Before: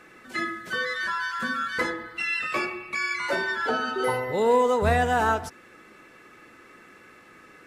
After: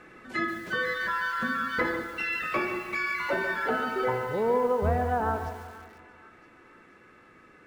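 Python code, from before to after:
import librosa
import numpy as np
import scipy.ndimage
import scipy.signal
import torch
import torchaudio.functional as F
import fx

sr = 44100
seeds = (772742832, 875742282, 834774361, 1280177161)

p1 = x + fx.echo_single(x, sr, ms=152, db=-18.0, dry=0)
p2 = fx.env_lowpass_down(p1, sr, base_hz=1300.0, full_db=-18.0)
p3 = fx.high_shelf(p2, sr, hz=3500.0, db=-9.5)
p4 = fx.rider(p3, sr, range_db=3, speed_s=0.5)
p5 = fx.low_shelf(p4, sr, hz=120.0, db=5.0)
p6 = fx.echo_split(p5, sr, split_hz=1300.0, low_ms=175, high_ms=482, feedback_pct=52, wet_db=-13.0)
p7 = fx.echo_crushed(p6, sr, ms=141, feedback_pct=35, bits=7, wet_db=-10.5)
y = p7 * 10.0 ** (-2.0 / 20.0)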